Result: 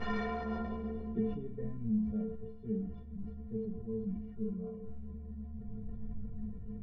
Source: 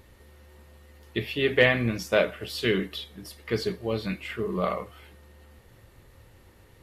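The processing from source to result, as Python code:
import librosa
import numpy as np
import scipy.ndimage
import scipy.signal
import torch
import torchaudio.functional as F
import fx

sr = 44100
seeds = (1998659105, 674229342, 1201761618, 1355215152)

y = fx.delta_mod(x, sr, bps=32000, step_db=-27.0)
y = fx.stiff_resonator(y, sr, f0_hz=210.0, decay_s=0.48, stiffness=0.03)
y = fx.filter_sweep_lowpass(y, sr, from_hz=1500.0, to_hz=130.0, start_s=0.22, end_s=1.57, q=0.91)
y = fx.sustainer(y, sr, db_per_s=53.0)
y = y * 10.0 ** (16.5 / 20.0)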